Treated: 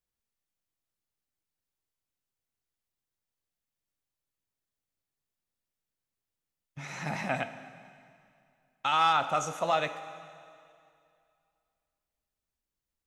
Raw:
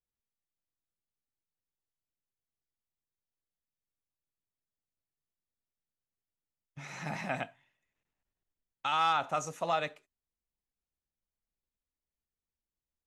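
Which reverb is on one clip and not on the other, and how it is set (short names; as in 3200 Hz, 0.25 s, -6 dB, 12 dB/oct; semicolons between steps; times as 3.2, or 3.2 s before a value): plate-style reverb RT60 2.4 s, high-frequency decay 0.95×, DRR 10.5 dB; gain +3.5 dB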